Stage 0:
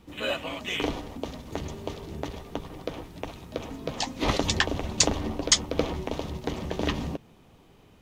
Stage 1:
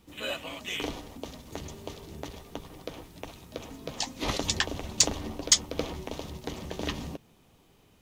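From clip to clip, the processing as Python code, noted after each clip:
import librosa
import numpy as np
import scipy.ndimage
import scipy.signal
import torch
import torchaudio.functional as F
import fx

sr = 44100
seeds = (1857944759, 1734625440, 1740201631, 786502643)

y = fx.high_shelf(x, sr, hz=4200.0, db=9.5)
y = np.clip(y, -10.0 ** (-0.5 / 20.0), 10.0 ** (-0.5 / 20.0))
y = y * librosa.db_to_amplitude(-6.0)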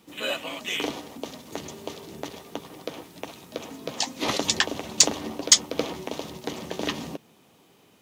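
y = scipy.signal.sosfilt(scipy.signal.butter(2, 180.0, 'highpass', fs=sr, output='sos'), x)
y = y * librosa.db_to_amplitude(5.0)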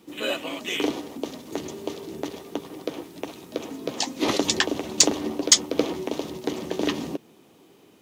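y = fx.peak_eq(x, sr, hz=340.0, db=8.5, octaves=0.89)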